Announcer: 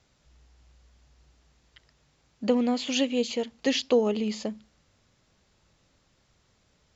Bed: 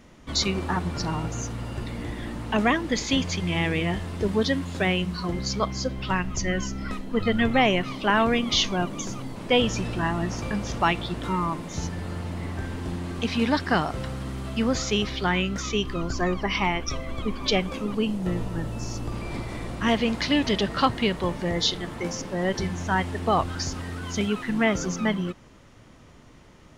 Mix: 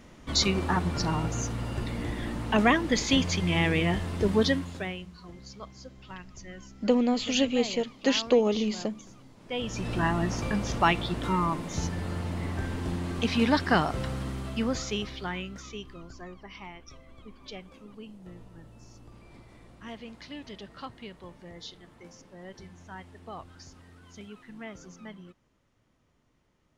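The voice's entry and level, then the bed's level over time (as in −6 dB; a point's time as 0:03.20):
4.40 s, +0.5 dB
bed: 0:04.48 0 dB
0:05.11 −18 dB
0:09.38 −18 dB
0:09.95 −0.5 dB
0:14.19 −0.5 dB
0:16.35 −19.5 dB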